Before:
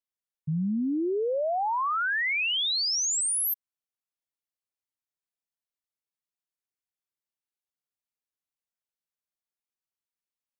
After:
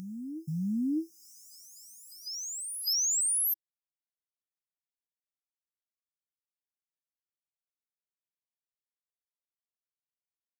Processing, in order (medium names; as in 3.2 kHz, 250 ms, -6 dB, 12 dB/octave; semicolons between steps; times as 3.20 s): companding laws mixed up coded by A; high-pass 190 Hz 12 dB/octave; on a send: reverse echo 605 ms -10 dB; on the sum: FFT band-reject 330–4900 Hz; tape noise reduction on one side only encoder only